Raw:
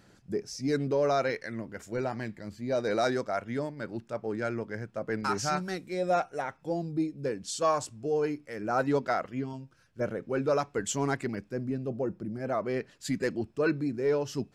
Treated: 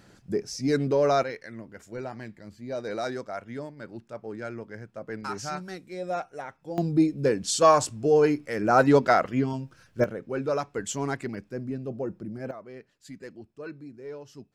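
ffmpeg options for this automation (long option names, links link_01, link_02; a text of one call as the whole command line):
ffmpeg -i in.wav -af "asetnsamples=nb_out_samples=441:pad=0,asendcmd='1.23 volume volume -4dB;6.78 volume volume 8.5dB;10.04 volume volume -0.5dB;12.51 volume volume -12.5dB',volume=4dB" out.wav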